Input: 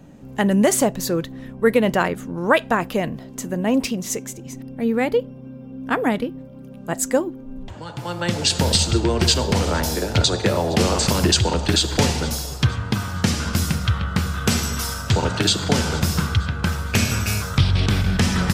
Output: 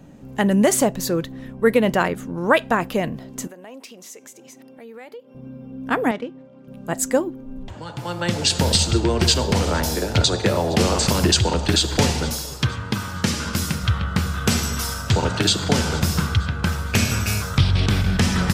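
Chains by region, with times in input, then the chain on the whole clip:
0:03.47–0:05.35: high-pass filter 430 Hz + downward compressor 3 to 1, threshold −41 dBFS
0:06.11–0:06.68: running median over 9 samples + high-pass filter 470 Hz 6 dB per octave + high-frequency loss of the air 84 metres
0:12.31–0:13.83: low-shelf EQ 110 Hz −7.5 dB + notch filter 720 Hz, Q 9.1
whole clip: no processing

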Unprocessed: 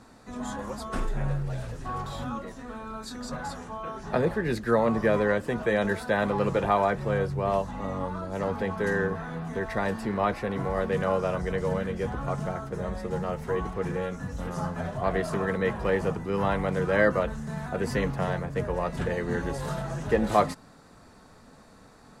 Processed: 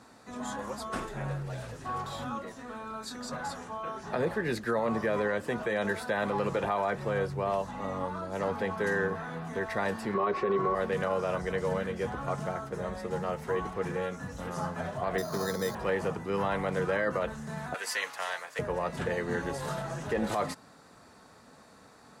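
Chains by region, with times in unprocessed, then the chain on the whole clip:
0:10.14–0:10.75: low-pass filter 5,500 Hz + comb filter 5.3 ms, depth 38% + hollow resonant body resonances 400/1,100 Hz, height 15 dB
0:15.18–0:15.75: high-pass filter 49 Hz + high-frequency loss of the air 450 metres + bad sample-rate conversion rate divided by 8×, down filtered, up hold
0:17.74–0:18.59: high-pass filter 670 Hz + tilt shelving filter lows −7 dB, about 1,200 Hz
whole clip: high-pass filter 64 Hz; low-shelf EQ 300 Hz −6.5 dB; brickwall limiter −20 dBFS

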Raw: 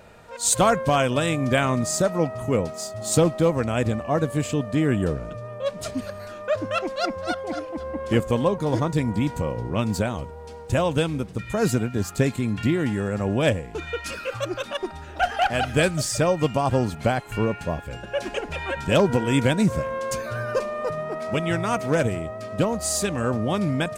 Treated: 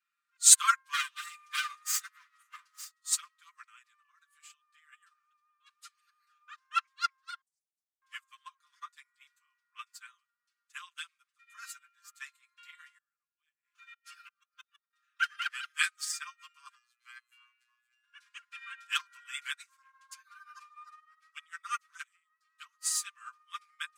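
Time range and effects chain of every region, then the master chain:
0:00.93–0:02.91: lower of the sound and its delayed copy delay 3.3 ms + high-shelf EQ 2,600 Hz +3.5 dB + upward compression, threshold −24 dBFS
0:03.66–0:04.93: Butterworth high-pass 280 Hz + notch filter 940 Hz, Q 27 + downward compressor 3 to 1, threshold −25 dBFS
0:07.41–0:08.02: inverse Chebyshev band-stop filter 250–3,200 Hz, stop band 50 dB + highs frequency-modulated by the lows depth 0.65 ms
0:12.97–0:14.93: gate with flip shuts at −18 dBFS, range −24 dB + log-companded quantiser 8 bits
0:16.75–0:18.04: parametric band 2,000 Hz +2 dB 0.36 octaves + phases set to zero 121 Hz
0:19.76–0:22.47: high-shelf EQ 10,000 Hz −3 dB + auto-filter notch sine 6.5 Hz 250–2,600 Hz
whole clip: Butterworth high-pass 1,100 Hz 96 dB per octave; comb filter 5.8 ms, depth 95%; expander for the loud parts 2.5 to 1, over −40 dBFS; level +2.5 dB

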